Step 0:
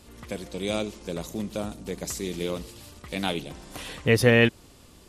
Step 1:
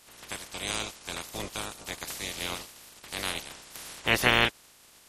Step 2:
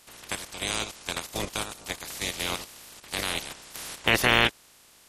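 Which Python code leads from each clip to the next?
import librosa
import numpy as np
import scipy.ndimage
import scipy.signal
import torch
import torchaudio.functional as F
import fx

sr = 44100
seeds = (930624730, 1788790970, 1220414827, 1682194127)

y1 = fx.spec_clip(x, sr, under_db=27)
y1 = y1 * 10.0 ** (-4.5 / 20.0)
y2 = fx.level_steps(y1, sr, step_db=9)
y2 = y2 * 10.0 ** (6.5 / 20.0)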